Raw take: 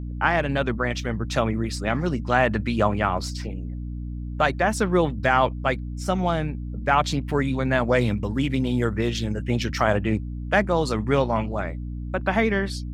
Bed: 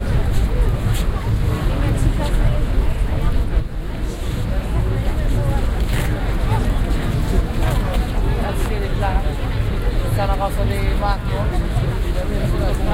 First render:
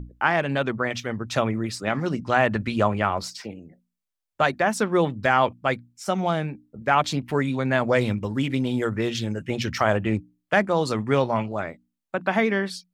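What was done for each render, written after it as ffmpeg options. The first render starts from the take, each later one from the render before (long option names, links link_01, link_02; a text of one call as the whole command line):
ffmpeg -i in.wav -af "bandreject=frequency=60:width_type=h:width=6,bandreject=frequency=120:width_type=h:width=6,bandreject=frequency=180:width_type=h:width=6,bandreject=frequency=240:width_type=h:width=6,bandreject=frequency=300:width_type=h:width=6" out.wav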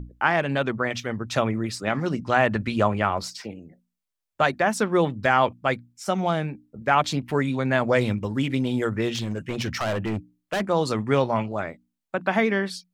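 ffmpeg -i in.wav -filter_complex "[0:a]asplit=3[link_01][link_02][link_03];[link_01]afade=type=out:start_time=9.13:duration=0.02[link_04];[link_02]asoftclip=type=hard:threshold=-22.5dB,afade=type=in:start_time=9.13:duration=0.02,afade=type=out:start_time=10.6:duration=0.02[link_05];[link_03]afade=type=in:start_time=10.6:duration=0.02[link_06];[link_04][link_05][link_06]amix=inputs=3:normalize=0" out.wav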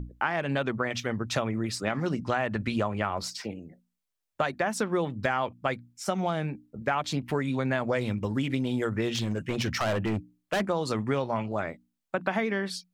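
ffmpeg -i in.wav -af "acompressor=threshold=-24dB:ratio=6" out.wav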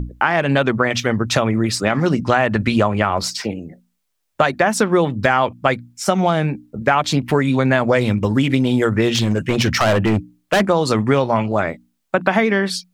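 ffmpeg -i in.wav -af "volume=12dB,alimiter=limit=-2dB:level=0:latency=1" out.wav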